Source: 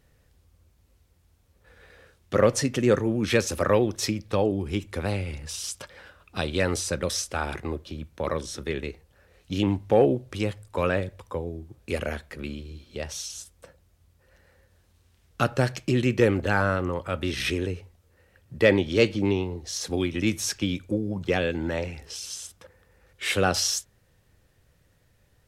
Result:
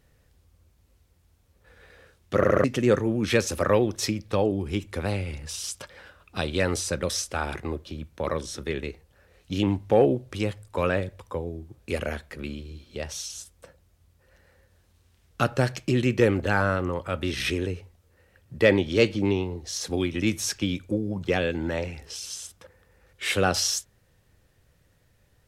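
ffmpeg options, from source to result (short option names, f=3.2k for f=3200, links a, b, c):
-filter_complex "[0:a]asplit=5[a][b][c][d][e];[a]atrim=end=2.432[f];[b]atrim=start=2.358:end=2.432[g];[c]atrim=start=2.358:end=2.432[h];[d]atrim=start=2.358:end=2.432[i];[e]atrim=start=2.638[j];[f][g]acrossfade=d=0.004:c1=hsin:c2=hsin[k];[k][h]acrossfade=d=0.004:c1=hsin:c2=hsin[l];[l][i]acrossfade=d=0.004:c1=hsin:c2=hsin[m];[m][j]acrossfade=d=0.004:c1=hsin:c2=hsin"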